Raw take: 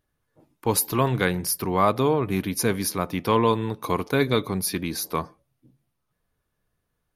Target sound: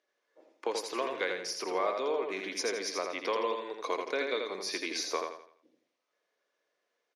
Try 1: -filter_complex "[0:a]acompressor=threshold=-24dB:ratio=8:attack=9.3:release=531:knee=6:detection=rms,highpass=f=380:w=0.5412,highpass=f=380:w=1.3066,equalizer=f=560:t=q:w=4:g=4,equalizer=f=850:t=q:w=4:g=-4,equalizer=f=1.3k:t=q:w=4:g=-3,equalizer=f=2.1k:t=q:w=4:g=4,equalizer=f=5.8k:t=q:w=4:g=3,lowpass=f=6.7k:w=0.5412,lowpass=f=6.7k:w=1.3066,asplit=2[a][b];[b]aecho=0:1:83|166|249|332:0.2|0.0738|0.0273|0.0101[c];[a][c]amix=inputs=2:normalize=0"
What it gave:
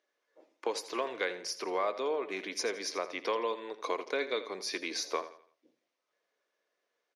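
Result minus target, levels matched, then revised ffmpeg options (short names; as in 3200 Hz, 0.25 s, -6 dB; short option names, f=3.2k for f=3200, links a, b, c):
echo-to-direct -9.5 dB
-filter_complex "[0:a]acompressor=threshold=-24dB:ratio=8:attack=9.3:release=531:knee=6:detection=rms,highpass=f=380:w=0.5412,highpass=f=380:w=1.3066,equalizer=f=560:t=q:w=4:g=4,equalizer=f=850:t=q:w=4:g=-4,equalizer=f=1.3k:t=q:w=4:g=-3,equalizer=f=2.1k:t=q:w=4:g=4,equalizer=f=5.8k:t=q:w=4:g=3,lowpass=f=6.7k:w=0.5412,lowpass=f=6.7k:w=1.3066,asplit=2[a][b];[b]aecho=0:1:83|166|249|332|415:0.596|0.22|0.0815|0.0302|0.0112[c];[a][c]amix=inputs=2:normalize=0"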